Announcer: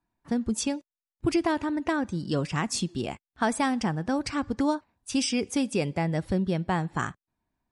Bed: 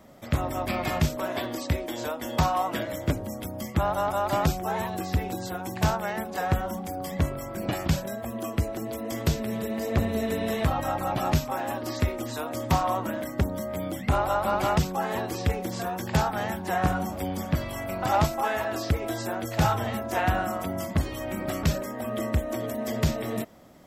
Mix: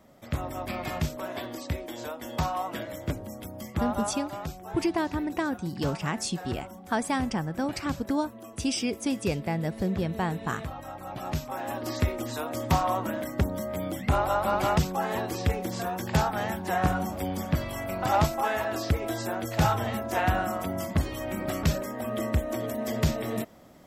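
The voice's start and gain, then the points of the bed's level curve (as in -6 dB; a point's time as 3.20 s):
3.50 s, -2.0 dB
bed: 4.03 s -5 dB
4.27 s -12 dB
10.97 s -12 dB
11.86 s -0.5 dB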